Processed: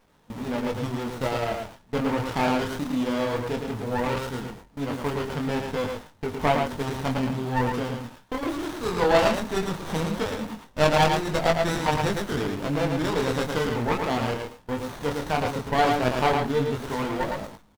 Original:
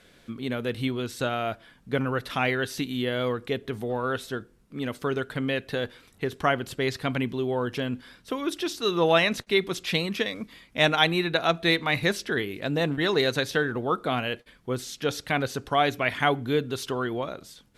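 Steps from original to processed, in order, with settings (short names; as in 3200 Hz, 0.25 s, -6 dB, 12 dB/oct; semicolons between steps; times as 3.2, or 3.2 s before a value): zero-crossing step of -33 dBFS; gate with hold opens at -25 dBFS; bell 910 Hz +12 dB 0.21 oct; chorus 0.17 Hz, delay 19.5 ms, depth 8 ms; bell 370 Hz -8.5 dB 0.21 oct; echo 0.11 s -4.5 dB; running maximum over 17 samples; gain +2.5 dB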